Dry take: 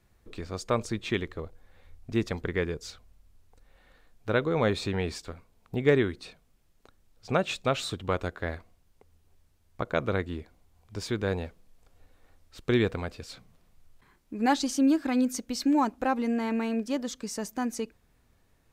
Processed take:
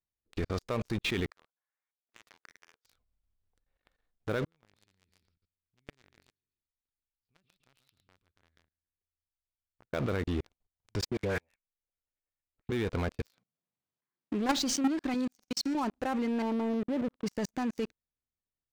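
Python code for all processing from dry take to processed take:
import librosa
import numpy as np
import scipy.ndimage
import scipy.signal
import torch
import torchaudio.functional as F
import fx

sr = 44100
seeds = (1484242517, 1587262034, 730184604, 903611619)

y = fx.chain(x, sr, fx.ladder_bandpass(hz=1500.0, resonance_pct=25),
    fx.over_compress(threshold_db=-52.0, ratio=-0.5), at=(1.3, 2.85))
y = fx.chain(y, sr, fx.tone_stack(knobs='6-0-2'),
    fx.echo_feedback(ms=138, feedback_pct=34, wet_db=-8.5),
    fx.resample_bad(factor=4, down='none', up='filtered'), at=(4.45, 9.93))
y = fx.chain(y, sr, fx.ladder_lowpass(hz=2600.0, resonance_pct=55),
    fx.peak_eq(hz=580.0, db=4.0, octaves=0.25),
    fx.dispersion(late='highs', ms=107.0, hz=1100.0), at=(11.05, 12.72))
y = fx.chain(y, sr, fx.highpass(hz=130.0, slope=24),
    fx.doppler_dist(depth_ms=0.33), at=(13.25, 14.57))
y = fx.chain(y, sr, fx.high_shelf(hz=2700.0, db=8.0),
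    fx.comb_fb(f0_hz=190.0, decay_s=1.5, harmonics='all', damping=0.0, mix_pct=70), at=(15.14, 15.75))
y = fx.chain(y, sr, fx.lowpass(hz=1100.0, slope=24),
    fx.low_shelf(hz=89.0, db=-11.0), at=(16.42, 17.26))
y = scipy.signal.sosfilt(scipy.signal.butter(2, 6000.0, 'lowpass', fs=sr, output='sos'), y)
y = fx.level_steps(y, sr, step_db=20)
y = fx.leveller(y, sr, passes=5)
y = y * 10.0 ** (-8.0 / 20.0)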